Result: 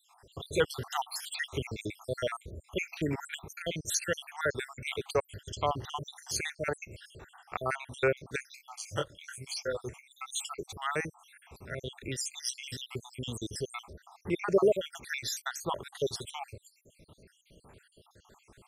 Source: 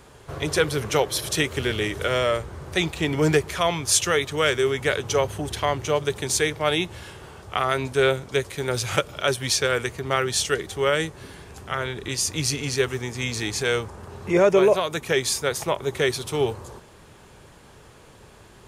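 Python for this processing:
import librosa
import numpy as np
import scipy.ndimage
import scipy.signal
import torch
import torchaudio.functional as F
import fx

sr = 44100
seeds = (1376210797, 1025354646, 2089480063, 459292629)

y = fx.spec_dropout(x, sr, seeds[0], share_pct=72)
y = fx.detune_double(y, sr, cents=25, at=(8.56, 9.86), fade=0.02)
y = y * librosa.db_to_amplitude(-5.5)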